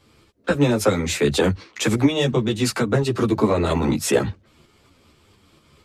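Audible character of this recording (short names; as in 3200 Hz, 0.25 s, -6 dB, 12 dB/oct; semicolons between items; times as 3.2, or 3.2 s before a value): tremolo saw up 4.3 Hz, depth 35%; a shimmering, thickened sound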